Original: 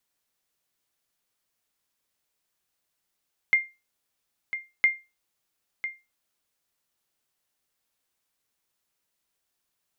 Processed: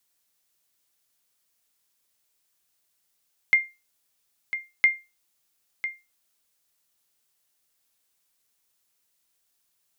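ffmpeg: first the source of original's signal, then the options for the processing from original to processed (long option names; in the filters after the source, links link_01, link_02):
-f lavfi -i "aevalsrc='0.251*(sin(2*PI*2110*mod(t,1.31))*exp(-6.91*mod(t,1.31)/0.25)+0.266*sin(2*PI*2110*max(mod(t,1.31)-1,0))*exp(-6.91*max(mod(t,1.31)-1,0)/0.25))':duration=2.62:sample_rate=44100"
-af "highshelf=frequency=3500:gain=8"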